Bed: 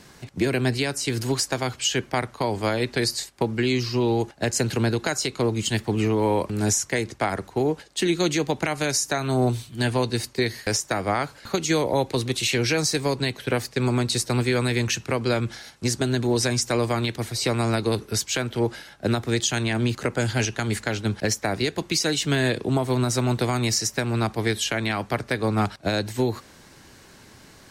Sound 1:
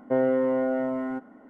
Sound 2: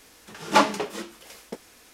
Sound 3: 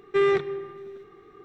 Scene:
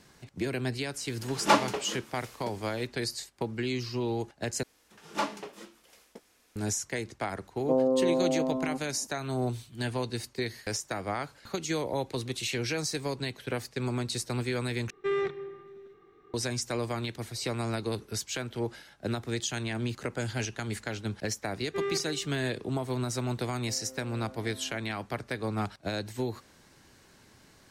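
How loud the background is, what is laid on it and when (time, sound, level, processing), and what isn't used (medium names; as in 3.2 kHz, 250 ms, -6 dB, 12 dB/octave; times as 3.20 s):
bed -9 dB
0.94 s: add 2 -4 dB + vibrato 1.6 Hz 20 cents
4.63 s: replace with 2 -12.5 dB
7.58 s: add 1 -2 dB + steep low-pass 1.2 kHz 96 dB/octave
14.90 s: replace with 3 -8 dB
21.60 s: add 3 -11 dB
23.58 s: add 1 -13.5 dB + compression, threshold -32 dBFS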